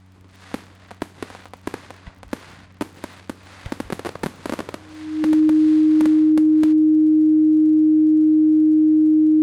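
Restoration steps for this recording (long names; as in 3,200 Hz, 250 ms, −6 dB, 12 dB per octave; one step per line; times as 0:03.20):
click removal
hum removal 93.5 Hz, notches 3
notch filter 310 Hz, Q 30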